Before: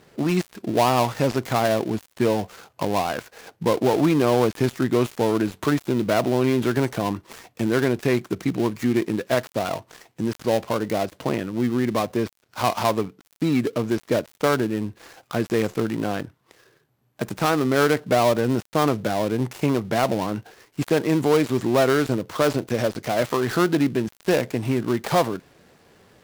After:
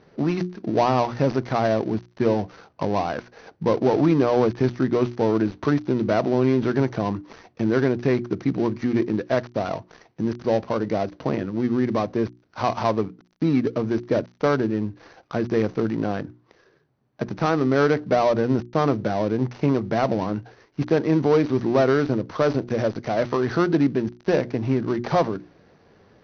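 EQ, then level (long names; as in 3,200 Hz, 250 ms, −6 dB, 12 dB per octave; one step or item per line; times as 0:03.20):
Chebyshev low-pass with heavy ripple 6,100 Hz, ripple 3 dB
tilt shelving filter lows +5 dB
mains-hum notches 60/120/180/240/300/360 Hz
0.0 dB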